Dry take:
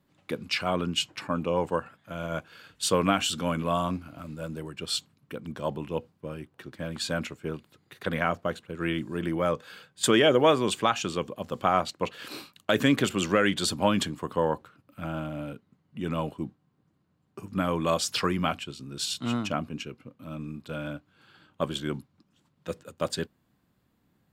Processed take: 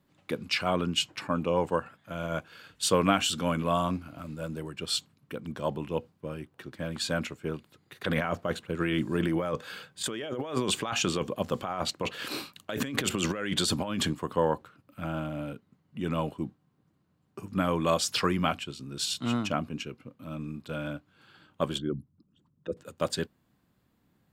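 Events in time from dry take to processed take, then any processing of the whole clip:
8.04–14.13 negative-ratio compressor -30 dBFS
21.78–22.77 formant sharpening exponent 2

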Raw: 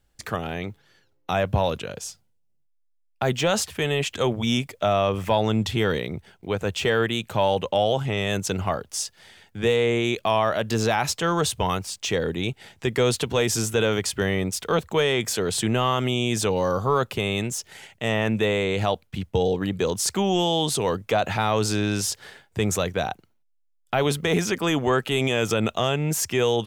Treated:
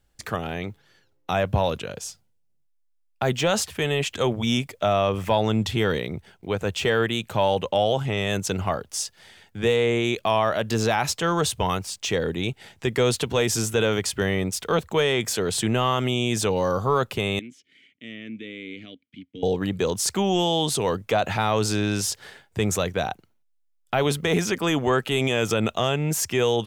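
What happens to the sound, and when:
17.39–19.43 vowel filter i

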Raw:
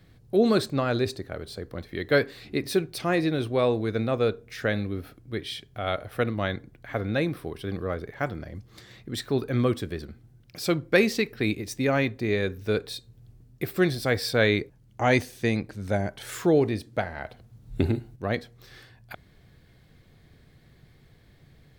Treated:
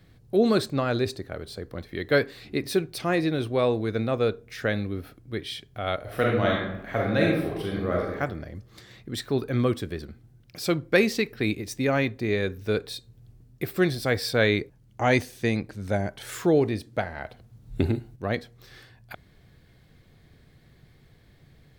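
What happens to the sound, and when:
6.01–8.15 reverb throw, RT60 0.85 s, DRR -3 dB

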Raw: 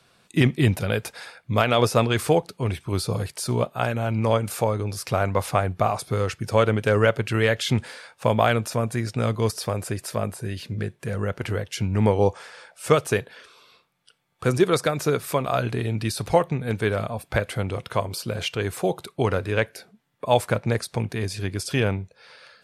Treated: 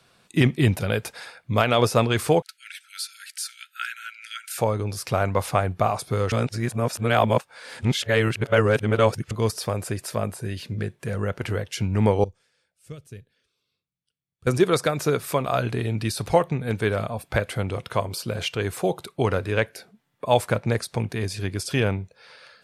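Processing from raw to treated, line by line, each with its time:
2.42–4.58 brick-wall FIR high-pass 1300 Hz
6.32–9.31 reverse
12.24–14.47 passive tone stack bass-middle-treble 10-0-1

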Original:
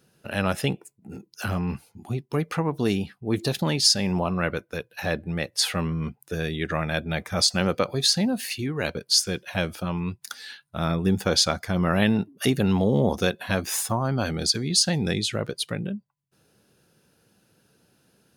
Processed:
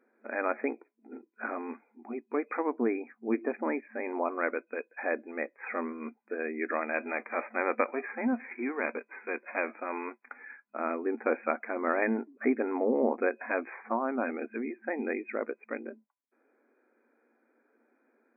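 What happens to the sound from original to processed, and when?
6.95–10.43 spectral whitening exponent 0.6
whole clip: FFT band-pass 220–2500 Hz; gain -3 dB

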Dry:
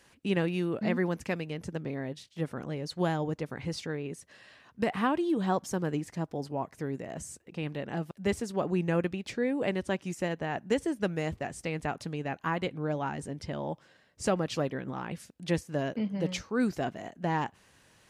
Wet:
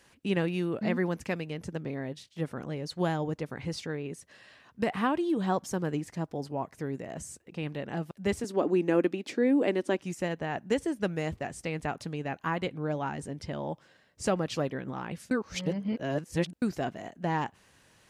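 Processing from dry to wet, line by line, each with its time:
8.44–9.99 resonant high-pass 290 Hz, resonance Q 2.6
15.31–16.62 reverse

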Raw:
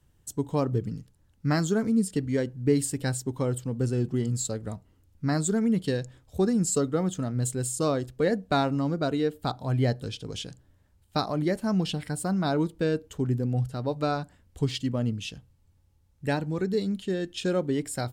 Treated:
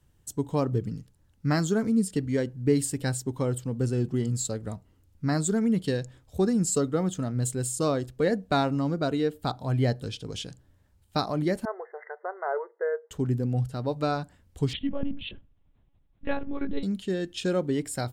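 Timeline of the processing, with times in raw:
11.65–13.11 brick-wall FIR band-pass 370–2100 Hz
14.73–16.83 monotone LPC vocoder at 8 kHz 280 Hz

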